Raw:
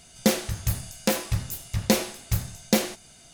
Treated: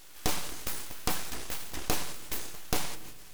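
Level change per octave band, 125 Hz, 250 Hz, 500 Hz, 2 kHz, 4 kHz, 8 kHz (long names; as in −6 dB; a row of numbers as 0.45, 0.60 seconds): −14.5, −15.0, −12.5, −6.0, −6.0, −5.5 decibels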